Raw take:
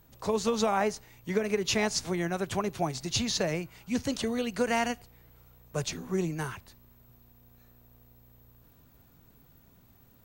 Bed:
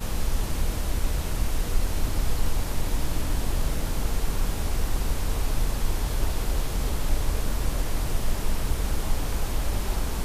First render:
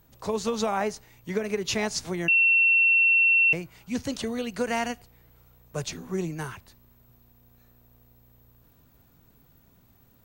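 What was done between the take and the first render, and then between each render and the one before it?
2.28–3.53 bleep 2710 Hz -16.5 dBFS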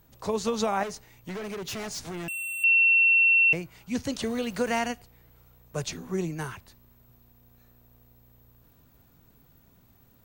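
0.83–2.64 hard clip -33 dBFS; 4.22–4.79 zero-crossing step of -41.5 dBFS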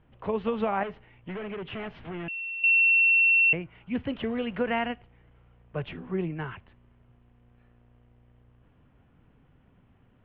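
Chebyshev low-pass 3100 Hz, order 5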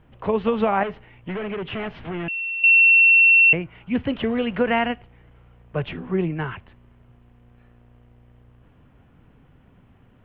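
gain +7 dB

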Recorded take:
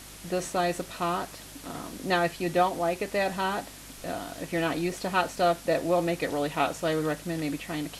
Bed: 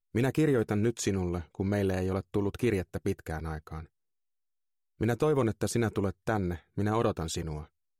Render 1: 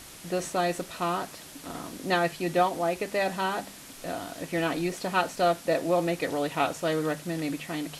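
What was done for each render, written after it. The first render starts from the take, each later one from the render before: de-hum 50 Hz, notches 5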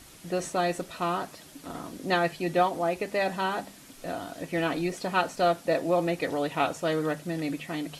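denoiser 6 dB, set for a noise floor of -46 dBFS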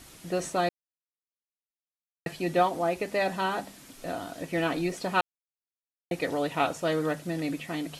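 0.69–2.26 mute; 5.21–6.11 mute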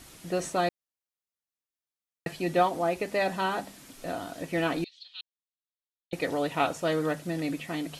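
4.84–6.13 Butterworth band-pass 3700 Hz, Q 3.3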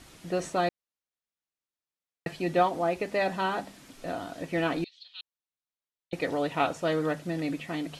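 high shelf 8700 Hz -11 dB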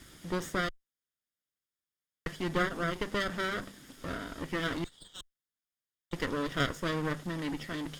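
minimum comb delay 0.59 ms; one-sided clip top -36.5 dBFS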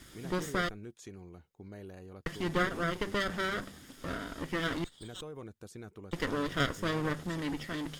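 add bed -18.5 dB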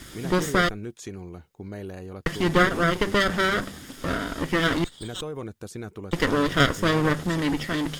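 gain +10.5 dB

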